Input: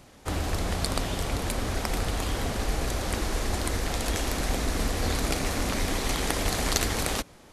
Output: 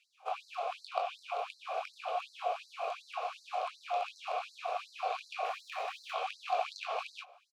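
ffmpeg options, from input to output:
ffmpeg -i in.wav -filter_complex "[0:a]equalizer=frequency=1700:width=3.6:gain=-4.5,acrossover=split=130|5100[link_01][link_02][link_03];[link_03]acompressor=threshold=-49dB:ratio=4[link_04];[link_01][link_02][link_04]amix=inputs=3:normalize=0,asplit=3[link_05][link_06][link_07];[link_05]bandpass=frequency=730:width_type=q:width=8,volume=0dB[link_08];[link_06]bandpass=frequency=1090:width_type=q:width=8,volume=-6dB[link_09];[link_07]bandpass=frequency=2440:width_type=q:width=8,volume=-9dB[link_10];[link_08][link_09][link_10]amix=inputs=3:normalize=0,asettb=1/sr,asplit=3[link_11][link_12][link_13];[link_11]atrim=end=5.454[link_14];[link_12]atrim=start=5.45:end=6.12,asetpts=PTS-STARTPTS,afade=type=in:duration=0.004:curve=qsin,afade=type=out:start_time=0.666:duration=0.004:curve=qsin,aeval=exprs='clip(val(0),-1,0.00841)':channel_layout=same[link_15];[link_13]atrim=start=6.116[link_16];[link_14][link_15]acrossfade=duration=0.004:curve1=hsin:curve2=qsin[link_17];[link_17][link_16]acrossfade=duration=0.004:curve1=qsin:curve2=hsin,asplit=2[link_18][link_19];[link_19]aecho=0:1:21|32:0.501|0.266[link_20];[link_18][link_20]amix=inputs=2:normalize=0,afftfilt=real='re*gte(b*sr/1024,390*pow(4000/390,0.5+0.5*sin(2*PI*2.7*pts/sr)))':imag='im*gte(b*sr/1024,390*pow(4000/390,0.5+0.5*sin(2*PI*2.7*pts/sr)))':win_size=1024:overlap=0.75,volume=7.5dB" out.wav

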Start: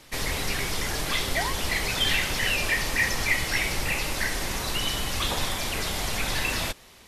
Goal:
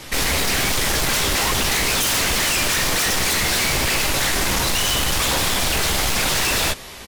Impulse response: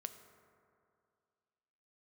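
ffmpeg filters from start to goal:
-filter_complex "[0:a]asplit=2[link_01][link_02];[link_02]adelay=15,volume=-5dB[link_03];[link_01][link_03]amix=inputs=2:normalize=0,aeval=exprs='0.355*sin(PI/2*7.08*val(0)/0.355)':channel_layout=same,volume=-7.5dB"

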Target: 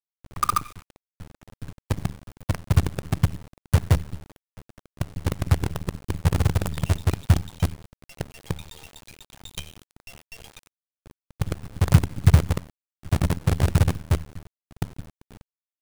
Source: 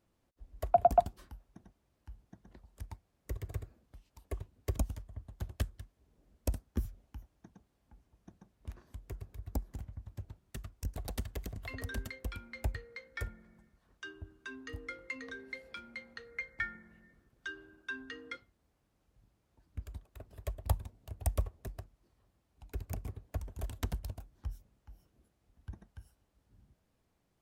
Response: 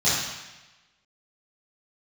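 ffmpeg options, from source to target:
-filter_complex "[0:a]asetrate=76440,aresample=44100,asplit=2[link_01][link_02];[link_02]adynamicsmooth=sensitivity=1:basefreq=5900,volume=-2dB[link_03];[link_01][link_03]amix=inputs=2:normalize=0,aecho=1:1:92:0.133,asplit=2[link_04][link_05];[1:a]atrim=start_sample=2205,afade=type=out:start_time=0.3:duration=0.01,atrim=end_sample=13671[link_06];[link_05][link_06]afir=irnorm=-1:irlink=0,volume=-34.5dB[link_07];[link_04][link_07]amix=inputs=2:normalize=0,asubboost=boost=10.5:cutoff=140,acrusher=bits=4:dc=4:mix=0:aa=0.000001,equalizer=frequency=9400:width=2:gain=3.5,volume=-2dB"

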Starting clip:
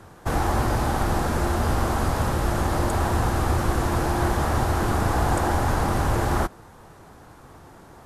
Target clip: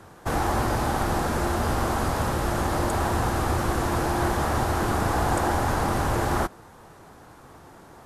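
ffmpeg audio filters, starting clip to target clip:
ffmpeg -i in.wav -af "lowshelf=frequency=120:gain=-5.5" out.wav

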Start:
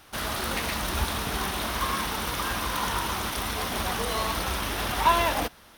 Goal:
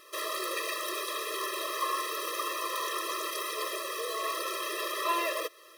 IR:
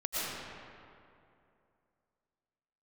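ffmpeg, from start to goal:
-filter_complex "[0:a]asplit=2[link_01][link_02];[link_02]acompressor=threshold=-34dB:ratio=16,volume=-0.5dB[link_03];[link_01][link_03]amix=inputs=2:normalize=0,asettb=1/sr,asplit=3[link_04][link_05][link_06];[link_04]atrim=end=3.754[link_07];[link_05]atrim=start=3.75:end=4.24,asetpts=PTS-STARTPTS,afade=type=in:duration=0.004:curve=qsin,afade=type=out:start_time=0.486:duration=0.004:curve=qsin,asoftclip=type=hard:threshold=-25dB[link_08];[link_06]atrim=start=4.236[link_09];[link_07][link_08]acrossfade=duration=0.004:curve1=hsin:curve2=qsin[link_10];[link_10][link_09]acrossfade=duration=0.004:curve1=qsin:curve2=hsin,afftfilt=real='re*eq(mod(floor(b*sr/1024/340),2),1)':imag='im*eq(mod(floor(b*sr/1024/340),2),1)':win_size=1024:overlap=0.75,volume=-3dB"

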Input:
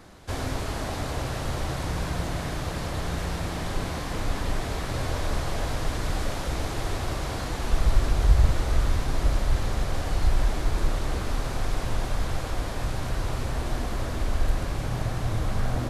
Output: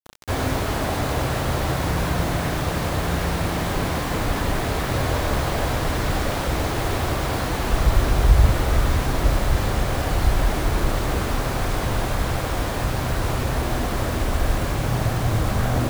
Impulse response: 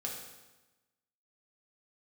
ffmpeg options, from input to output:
-filter_complex "[0:a]highpass=frequency=60:poles=1,acrossover=split=3700[link_01][link_02];[link_01]acontrast=66[link_03];[link_03][link_02]amix=inputs=2:normalize=0,acrusher=bits=5:mix=0:aa=0.000001,volume=1.5dB"

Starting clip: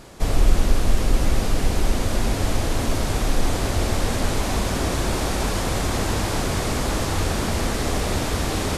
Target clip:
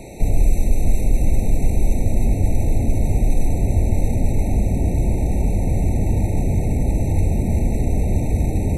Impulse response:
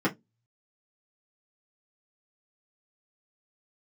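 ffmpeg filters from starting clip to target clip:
-filter_complex "[0:a]acrossover=split=1900|5900[link_01][link_02][link_03];[link_01]acompressor=threshold=-19dB:ratio=4[link_04];[link_02]acompressor=threshold=-47dB:ratio=4[link_05];[link_03]acompressor=threshold=-39dB:ratio=4[link_06];[link_04][link_05][link_06]amix=inputs=3:normalize=0,superequalizer=9b=0.708:11b=0.501:13b=0.631:14b=0.316,acrossover=split=230[link_07][link_08];[link_08]alimiter=level_in=8.5dB:limit=-24dB:level=0:latency=1:release=22,volume=-8.5dB[link_09];[link_07][link_09]amix=inputs=2:normalize=0,afftfilt=real='re*eq(mod(floor(b*sr/1024/910),2),0)':imag='im*eq(mod(floor(b*sr/1024/910),2),0)':win_size=1024:overlap=0.75,volume=8.5dB"

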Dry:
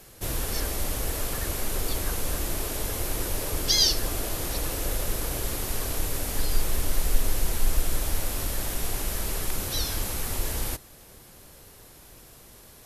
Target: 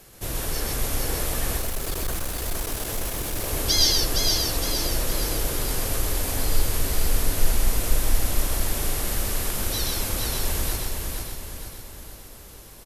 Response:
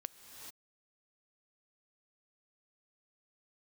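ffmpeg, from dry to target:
-filter_complex "[0:a]asplit=2[link_01][link_02];[link_02]aecho=0:1:464|928|1392|1856|2320|2784:0.631|0.303|0.145|0.0698|0.0335|0.0161[link_03];[link_01][link_03]amix=inputs=2:normalize=0,asettb=1/sr,asplit=3[link_04][link_05][link_06];[link_04]atrim=end=1.574[link_07];[link_05]atrim=start=1.57:end=3.44,asetpts=PTS-STARTPTS,afade=type=in:duration=0.004:curve=qsin,afade=type=out:start_time=1.866:duration=0.004:curve=qsin,asoftclip=type=hard:threshold=-26dB[link_08];[link_06]atrim=start=3.436[link_09];[link_07][link_08]acrossfade=duration=0.004:curve1=hsin:curve2=qsin[link_10];[link_10][link_09]acrossfade=duration=0.004:curve1=qsin:curve2=hsin,asplit=2[link_11][link_12];[link_12]aecho=0:1:129:0.708[link_13];[link_11][link_13]amix=inputs=2:normalize=0"

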